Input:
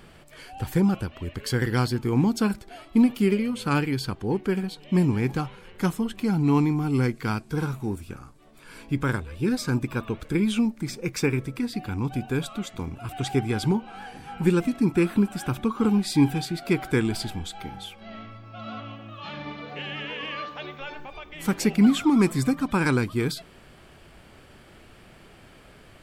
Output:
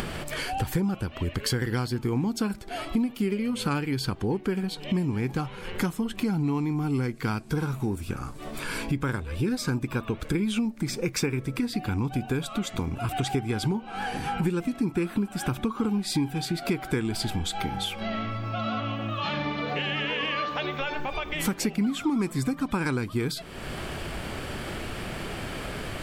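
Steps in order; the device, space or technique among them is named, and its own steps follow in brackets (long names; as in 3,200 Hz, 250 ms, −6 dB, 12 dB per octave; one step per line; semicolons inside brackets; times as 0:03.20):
upward and downward compression (upward compression, threshold −29 dBFS; downward compressor 6 to 1, threshold −30 dBFS, peak gain reduction 15.5 dB)
level +6 dB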